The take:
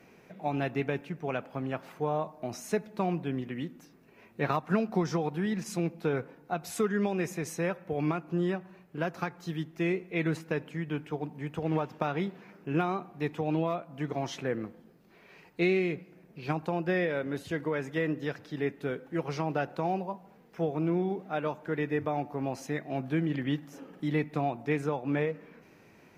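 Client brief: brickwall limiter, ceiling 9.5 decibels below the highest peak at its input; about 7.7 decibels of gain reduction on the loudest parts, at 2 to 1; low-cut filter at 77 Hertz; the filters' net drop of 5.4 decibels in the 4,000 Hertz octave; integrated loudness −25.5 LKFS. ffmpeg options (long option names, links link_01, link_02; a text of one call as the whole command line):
ffmpeg -i in.wav -af "highpass=77,equalizer=frequency=4000:width_type=o:gain=-7.5,acompressor=threshold=-37dB:ratio=2,volume=14dB,alimiter=limit=-14dB:level=0:latency=1" out.wav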